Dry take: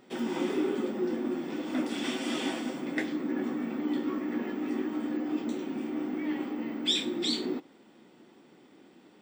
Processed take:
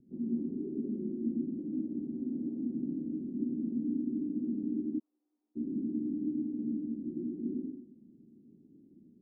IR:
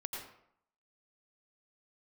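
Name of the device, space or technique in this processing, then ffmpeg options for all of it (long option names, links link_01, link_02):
club heard from the street: -filter_complex "[0:a]alimiter=limit=-24dB:level=0:latency=1:release=142,lowpass=frequency=250:width=0.5412,lowpass=frequency=250:width=1.3066[link_01];[1:a]atrim=start_sample=2205[link_02];[link_01][link_02]afir=irnorm=-1:irlink=0,asplit=3[link_03][link_04][link_05];[link_03]afade=type=out:start_time=4.98:duration=0.02[link_06];[link_04]highpass=frequency=1200:width=0.5412,highpass=frequency=1200:width=1.3066,afade=type=in:start_time=4.98:duration=0.02,afade=type=out:start_time=5.55:duration=0.02[link_07];[link_05]afade=type=in:start_time=5.55:duration=0.02[link_08];[link_06][link_07][link_08]amix=inputs=3:normalize=0,volume=4.5dB"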